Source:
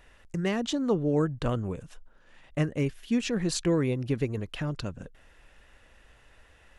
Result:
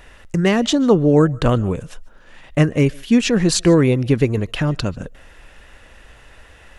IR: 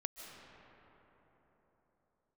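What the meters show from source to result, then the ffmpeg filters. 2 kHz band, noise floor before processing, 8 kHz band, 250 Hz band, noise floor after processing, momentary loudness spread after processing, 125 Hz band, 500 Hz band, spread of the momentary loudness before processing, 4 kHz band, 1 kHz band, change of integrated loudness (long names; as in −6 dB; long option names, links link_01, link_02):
+12.5 dB, −59 dBFS, +12.5 dB, +12.5 dB, −46 dBFS, 12 LU, +12.5 dB, +12.5 dB, 12 LU, +12.5 dB, +12.5 dB, +12.5 dB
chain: -filter_complex "[0:a]asplit=2[link_01][link_02];[1:a]atrim=start_sample=2205,afade=type=out:start_time=0.2:duration=0.01,atrim=end_sample=9261[link_03];[link_02][link_03]afir=irnorm=-1:irlink=0,volume=-3.5dB[link_04];[link_01][link_04]amix=inputs=2:normalize=0,volume=9dB"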